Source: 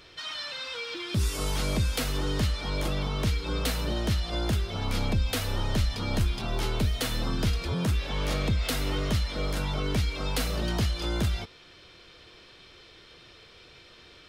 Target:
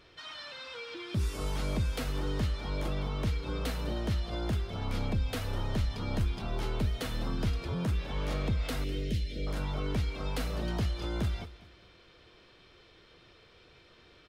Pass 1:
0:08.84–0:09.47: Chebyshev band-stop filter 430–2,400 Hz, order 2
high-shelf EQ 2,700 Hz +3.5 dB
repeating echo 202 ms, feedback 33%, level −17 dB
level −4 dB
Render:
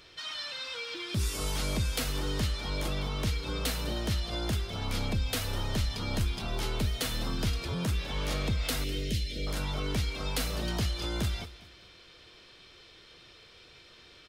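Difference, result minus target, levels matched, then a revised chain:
4,000 Hz band +6.0 dB
0:08.84–0:09.47: Chebyshev band-stop filter 430–2,400 Hz, order 2
high-shelf EQ 2,700 Hz −8 dB
repeating echo 202 ms, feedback 33%, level −17 dB
level −4 dB

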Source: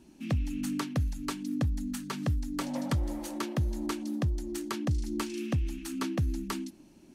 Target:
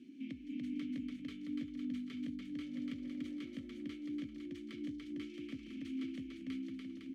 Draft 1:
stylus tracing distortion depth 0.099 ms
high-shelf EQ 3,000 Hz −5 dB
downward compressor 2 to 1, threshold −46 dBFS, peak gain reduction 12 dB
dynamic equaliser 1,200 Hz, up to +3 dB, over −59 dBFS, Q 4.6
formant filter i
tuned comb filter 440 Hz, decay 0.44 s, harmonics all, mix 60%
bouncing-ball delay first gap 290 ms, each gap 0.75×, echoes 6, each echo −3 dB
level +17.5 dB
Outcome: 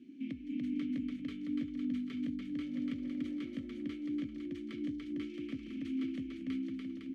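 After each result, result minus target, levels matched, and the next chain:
downward compressor: peak gain reduction −4.5 dB; 4,000 Hz band −3.5 dB
stylus tracing distortion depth 0.099 ms
high-shelf EQ 3,000 Hz −5 dB
downward compressor 2 to 1, threshold −55 dBFS, peak gain reduction 16.5 dB
dynamic equaliser 1,200 Hz, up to +3 dB, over −59 dBFS, Q 4.6
formant filter i
tuned comb filter 440 Hz, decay 0.44 s, harmonics all, mix 60%
bouncing-ball delay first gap 290 ms, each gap 0.75×, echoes 6, each echo −3 dB
level +17.5 dB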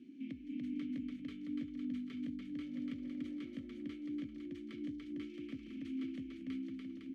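4,000 Hz band −3.5 dB
stylus tracing distortion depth 0.099 ms
high-shelf EQ 3,000 Hz +2.5 dB
downward compressor 2 to 1, threshold −55 dBFS, peak gain reduction 16.5 dB
dynamic equaliser 1,200 Hz, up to +3 dB, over −59 dBFS, Q 4.6
formant filter i
tuned comb filter 440 Hz, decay 0.44 s, harmonics all, mix 60%
bouncing-ball delay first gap 290 ms, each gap 0.75×, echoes 6, each echo −3 dB
level +17.5 dB

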